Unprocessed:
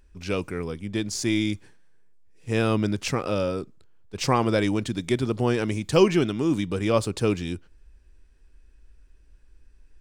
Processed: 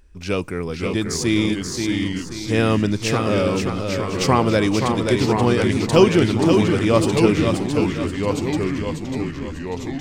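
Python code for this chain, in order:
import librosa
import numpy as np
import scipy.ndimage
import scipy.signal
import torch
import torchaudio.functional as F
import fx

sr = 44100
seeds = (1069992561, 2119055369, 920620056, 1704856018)

y = fx.echo_feedback(x, sr, ms=530, feedback_pct=38, wet_db=-5.5)
y = fx.echo_pitch(y, sr, ms=479, semitones=-2, count=3, db_per_echo=-6.0)
y = F.gain(torch.from_numpy(y), 4.5).numpy()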